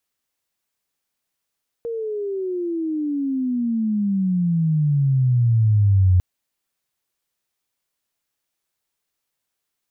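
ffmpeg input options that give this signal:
-f lavfi -i "aevalsrc='pow(10,(-24+12.5*t/4.35)/20)*sin(2*PI*470*4.35/log(89/470)*(exp(log(89/470)*t/4.35)-1))':d=4.35:s=44100"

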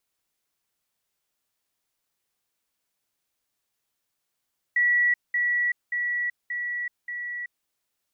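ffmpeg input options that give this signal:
-f lavfi -i "aevalsrc='pow(10,(-18-3*floor(t/0.58))/20)*sin(2*PI*1940*t)*clip(min(mod(t,0.58),0.38-mod(t,0.58))/0.005,0,1)':d=2.9:s=44100"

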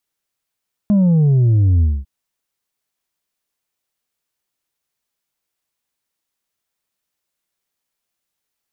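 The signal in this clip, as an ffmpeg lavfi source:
-f lavfi -i "aevalsrc='0.299*clip((1.15-t)/0.23,0,1)*tanh(1.5*sin(2*PI*210*1.15/log(65/210)*(exp(log(65/210)*t/1.15)-1)))/tanh(1.5)':d=1.15:s=44100"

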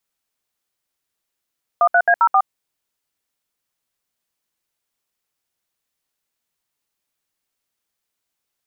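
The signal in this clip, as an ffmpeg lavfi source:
-f lavfi -i "aevalsrc='0.224*clip(min(mod(t,0.133),0.065-mod(t,0.133))/0.002,0,1)*(eq(floor(t/0.133),0)*(sin(2*PI*697*mod(t,0.133))+sin(2*PI*1209*mod(t,0.133)))+eq(floor(t/0.133),1)*(sin(2*PI*697*mod(t,0.133))+sin(2*PI*1477*mod(t,0.133)))+eq(floor(t/0.133),2)*(sin(2*PI*697*mod(t,0.133))+sin(2*PI*1633*mod(t,0.133)))+eq(floor(t/0.133),3)*(sin(2*PI*941*mod(t,0.133))+sin(2*PI*1336*mod(t,0.133)))+eq(floor(t/0.133),4)*(sin(2*PI*770*mod(t,0.133))+sin(2*PI*1209*mod(t,0.133))))':d=0.665:s=44100"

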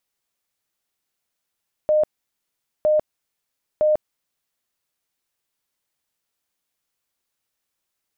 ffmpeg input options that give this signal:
-f lavfi -i "aevalsrc='0.2*sin(2*PI*611*mod(t,0.96))*lt(mod(t,0.96),89/611)':d=2.88:s=44100"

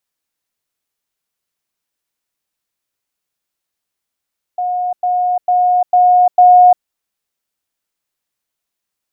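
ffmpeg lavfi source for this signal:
-f lavfi -i "aevalsrc='pow(10,(-15+3*floor(t/0.45))/20)*sin(2*PI*722*t)*clip(min(mod(t,0.45),0.35-mod(t,0.45))/0.005,0,1)':d=2.25:s=44100"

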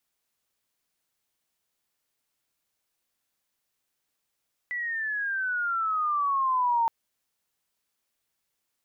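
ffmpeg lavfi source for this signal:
-f lavfi -i "aevalsrc='pow(10,(-20.5+8*(t/2.17-1))/20)*sin(2*PI*1980*2.17/(-13.5*log(2)/12)*(exp(-13.5*log(2)/12*t/2.17)-1))':d=2.17:s=44100"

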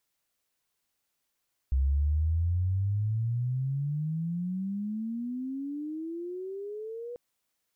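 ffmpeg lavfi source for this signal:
-f lavfi -i "aevalsrc='pow(10,(-22-14*t/5.44)/20)*sin(2*PI*64.9*5.44/(35*log(2)/12)*(exp(35*log(2)/12*t/5.44)-1))':d=5.44:s=44100"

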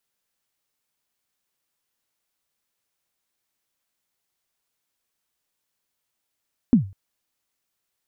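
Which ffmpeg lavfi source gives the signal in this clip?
-f lavfi -i "aevalsrc='0.422*pow(10,-3*t/0.33)*sin(2*PI*(270*0.113/log(97/270)*(exp(log(97/270)*min(t,0.113)/0.113)-1)+97*max(t-0.113,0)))':d=0.2:s=44100"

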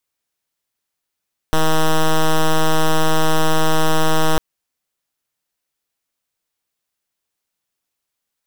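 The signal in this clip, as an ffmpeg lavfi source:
-f lavfi -i "aevalsrc='0.224*(2*lt(mod(158*t,1),0.07)-1)':d=2.85:s=44100"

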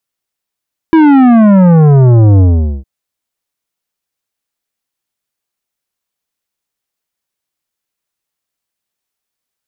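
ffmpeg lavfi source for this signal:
-f lavfi -i "aevalsrc='0.631*clip((1.91-t)/0.44,0,1)*tanh(3.98*sin(2*PI*330*1.91/log(65/330)*(exp(log(65/330)*t/1.91)-1)))/tanh(3.98)':d=1.91:s=44100"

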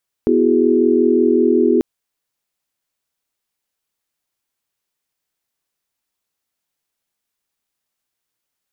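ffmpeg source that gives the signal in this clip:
-f lavfi -i "aevalsrc='0.15*(sin(2*PI*246.94*t)+sin(2*PI*329.63*t)+sin(2*PI*369.99*t)+sin(2*PI*415.3*t))':d=1.54:s=44100"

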